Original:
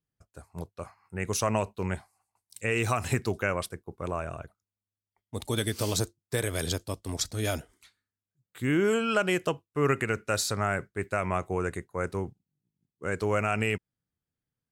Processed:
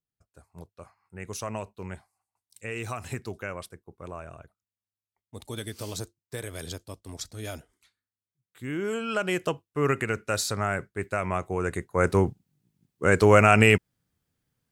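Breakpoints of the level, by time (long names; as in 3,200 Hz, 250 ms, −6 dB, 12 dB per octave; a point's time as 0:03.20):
0:08.70 −7 dB
0:09.45 +0.5 dB
0:11.56 +0.5 dB
0:12.14 +10.5 dB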